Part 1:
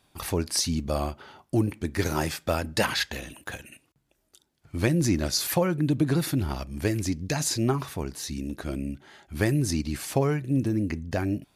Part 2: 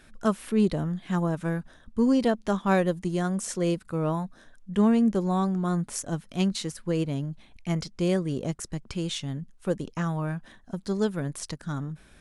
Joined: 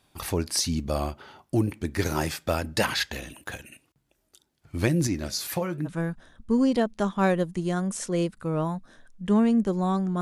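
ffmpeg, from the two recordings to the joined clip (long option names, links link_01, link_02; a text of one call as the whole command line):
ffmpeg -i cue0.wav -i cue1.wav -filter_complex "[0:a]asettb=1/sr,asplit=3[link_01][link_02][link_03];[link_01]atrim=end=5.074[link_04];[link_02]atrim=start=5.07:end=5.9,asetpts=PTS-STARTPTS,afade=type=in:duration=0.004:curve=qsin,afade=type=out:start_time=0.826:duration=0.004:curve=qsin,flanger=delay=6.2:depth=5.9:regen=74:speed=1.2:shape=triangular[link_05];[link_03]atrim=start=5.896[link_06];[link_04][link_05]acrossfade=duration=0.004:curve1=hsin:curve2=qsin[link_07];[link_07][link_06]acrossfade=duration=0.004:curve1=qsin:curve2=hsin,apad=whole_dur=10.21,atrim=end=10.21,atrim=end=5.9,asetpts=PTS-STARTPTS[link_08];[1:a]atrim=start=1.32:end=5.69,asetpts=PTS-STARTPTS[link_09];[link_08][link_09]acrossfade=duration=0.06:curve1=tri:curve2=tri" out.wav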